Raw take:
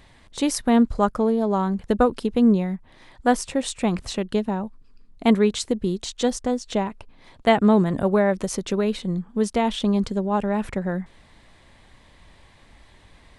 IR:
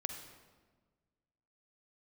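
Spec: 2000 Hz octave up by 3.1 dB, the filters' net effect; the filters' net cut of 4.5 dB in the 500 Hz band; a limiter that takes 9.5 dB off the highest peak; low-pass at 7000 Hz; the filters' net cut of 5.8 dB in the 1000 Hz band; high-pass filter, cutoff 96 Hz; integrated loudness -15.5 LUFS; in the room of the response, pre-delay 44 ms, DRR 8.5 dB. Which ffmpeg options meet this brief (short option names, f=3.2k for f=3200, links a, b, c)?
-filter_complex "[0:a]highpass=96,lowpass=7k,equalizer=f=500:t=o:g=-4,equalizer=f=1k:t=o:g=-7.5,equalizer=f=2k:t=o:g=6,alimiter=limit=-15.5dB:level=0:latency=1,asplit=2[a][b];[1:a]atrim=start_sample=2205,adelay=44[c];[b][c]afir=irnorm=-1:irlink=0,volume=-8.5dB[d];[a][d]amix=inputs=2:normalize=0,volume=11dB"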